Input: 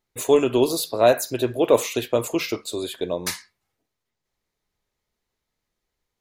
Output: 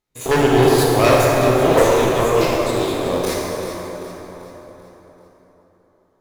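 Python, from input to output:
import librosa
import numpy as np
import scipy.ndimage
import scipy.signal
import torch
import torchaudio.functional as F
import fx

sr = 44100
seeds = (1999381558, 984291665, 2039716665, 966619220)

p1 = fx.spec_steps(x, sr, hold_ms=50)
p2 = np.where(np.abs(p1) >= 10.0 ** (-25.0 / 20.0), p1, 0.0)
p3 = p1 + (p2 * librosa.db_to_amplitude(-4.0))
p4 = fx.dispersion(p3, sr, late='lows', ms=56.0, hz=1600.0, at=(1.29, 2.44))
p5 = fx.cheby_harmonics(p4, sr, harmonics=(5, 6), levels_db=(-13, -9), full_scale_db=-1.5)
p6 = p5 + fx.echo_feedback(p5, sr, ms=388, feedback_pct=45, wet_db=-12, dry=0)
p7 = fx.rev_plate(p6, sr, seeds[0], rt60_s=4.3, hf_ratio=0.45, predelay_ms=0, drr_db=-4.0)
y = p7 * librosa.db_to_amplitude(-7.5)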